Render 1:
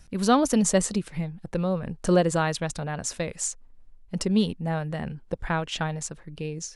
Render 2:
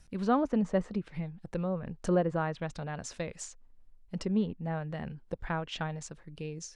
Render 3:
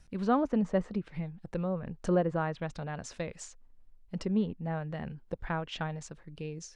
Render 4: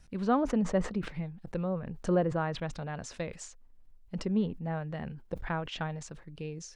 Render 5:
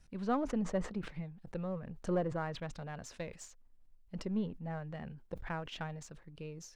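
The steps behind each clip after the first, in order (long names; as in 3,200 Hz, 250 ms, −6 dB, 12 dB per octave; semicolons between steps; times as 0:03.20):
treble cut that deepens with the level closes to 1,700 Hz, closed at −21 dBFS; level −6.5 dB
high-shelf EQ 6,900 Hz −6.5 dB
level that may fall only so fast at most 120 dB per second
gain on one half-wave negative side −3 dB; level −4.5 dB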